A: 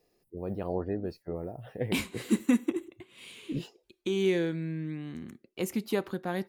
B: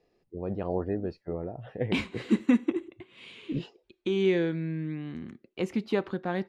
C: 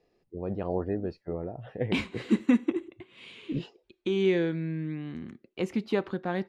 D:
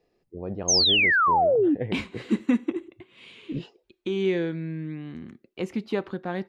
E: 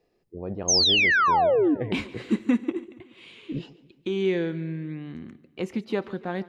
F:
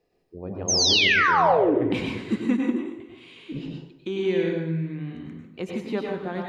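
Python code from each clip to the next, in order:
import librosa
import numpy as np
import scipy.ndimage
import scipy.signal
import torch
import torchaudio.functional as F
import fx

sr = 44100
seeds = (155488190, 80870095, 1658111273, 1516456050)

y1 = scipy.signal.sosfilt(scipy.signal.butter(2, 3700.0, 'lowpass', fs=sr, output='sos'), x)
y1 = F.gain(torch.from_numpy(y1), 2.0).numpy()
y2 = y1
y3 = fx.spec_paint(y2, sr, seeds[0], shape='fall', start_s=0.68, length_s=1.07, low_hz=270.0, high_hz=6600.0, level_db=-20.0)
y4 = fx.echo_feedback(y3, sr, ms=142, feedback_pct=54, wet_db=-20.0)
y5 = fx.rev_plate(y4, sr, seeds[1], rt60_s=0.63, hf_ratio=0.75, predelay_ms=85, drr_db=0.0)
y5 = F.gain(torch.from_numpy(y5), -2.0).numpy()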